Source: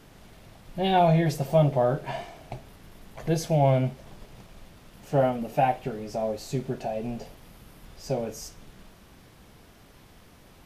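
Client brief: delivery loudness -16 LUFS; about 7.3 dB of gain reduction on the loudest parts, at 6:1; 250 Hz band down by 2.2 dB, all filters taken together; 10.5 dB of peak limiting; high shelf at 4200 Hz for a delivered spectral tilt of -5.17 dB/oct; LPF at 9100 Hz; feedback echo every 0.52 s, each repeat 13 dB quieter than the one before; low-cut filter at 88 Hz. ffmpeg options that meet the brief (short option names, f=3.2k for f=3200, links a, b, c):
-af "highpass=88,lowpass=9.1k,equalizer=f=250:t=o:g=-3.5,highshelf=f=4.2k:g=3,acompressor=threshold=-24dB:ratio=6,alimiter=level_in=2.5dB:limit=-24dB:level=0:latency=1,volume=-2.5dB,aecho=1:1:520|1040|1560:0.224|0.0493|0.0108,volume=21.5dB"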